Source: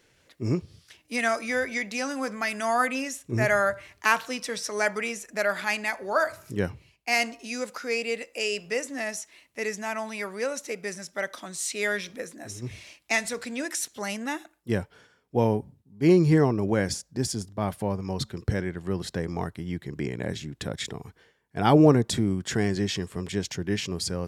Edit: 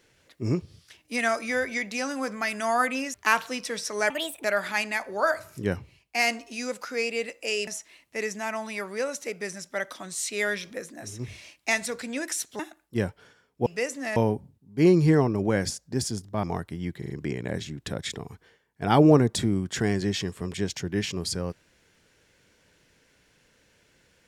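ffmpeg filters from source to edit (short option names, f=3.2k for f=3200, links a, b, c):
-filter_complex "[0:a]asplit=12[a][b][c][d][e][f][g][h][i][j][k][l];[a]atrim=end=3.142[m];[b]atrim=start=3.928:end=4.894[n];[c]atrim=start=4.89:end=5.37,asetpts=PTS-STARTPTS,asetrate=61740,aresample=44100,atrim=end_sample=15120,asetpts=PTS-STARTPTS[o];[d]atrim=start=5.366:end=8.602[p];[e]atrim=start=9.098:end=14.022[q];[f]atrim=start=14.328:end=15.402[r];[g]atrim=start=8.598:end=9.102[s];[h]atrim=start=15.398:end=17.672[t];[i]atrim=start=19.298:end=19.892[u];[j]atrim=start=19.848:end=19.892[v];[k]atrim=start=19.848:end=19.892[w];[l]atrim=start=19.848[x];[m][n]acrossfade=d=0.004:c1=hsin:c2=hsin[y];[y][o]acrossfade=d=0.004:c1=hsin:c2=hsin[z];[z][p]acrossfade=d=0.004:c1=hsin:c2=hsin[aa];[aa][q]acrossfade=d=0.004:c1=hsin:c2=hsin[ab];[ab][r]acrossfade=d=0.004:c1=hsin:c2=hsin[ac];[ac][s]acrossfade=d=0.004:c1=hsin:c2=hsin[ad];[ad][t]acrossfade=d=0.004:c1=hsin:c2=hsin[ae];[ae][u]acrossfade=d=0.004:c1=hsin:c2=hsin[af];[af][v]acrossfade=d=0.004:c1=hsin:c2=hsin[ag];[ag][w]acrossfade=d=0.004:c1=hsin:c2=hsin[ah];[ah][x]acrossfade=d=0.004:c1=hsin:c2=hsin"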